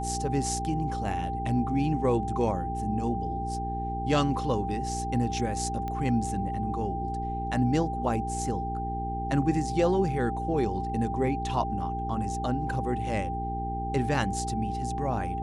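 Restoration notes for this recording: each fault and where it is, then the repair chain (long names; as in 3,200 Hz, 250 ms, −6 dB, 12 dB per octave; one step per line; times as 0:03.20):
mains hum 60 Hz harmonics 7 −34 dBFS
whistle 790 Hz −32 dBFS
0:05.88: click −22 dBFS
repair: click removal
hum removal 60 Hz, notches 7
notch filter 790 Hz, Q 30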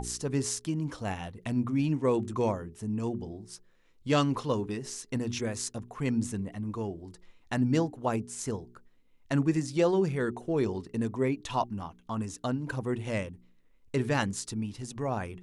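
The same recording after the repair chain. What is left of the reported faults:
none of them is left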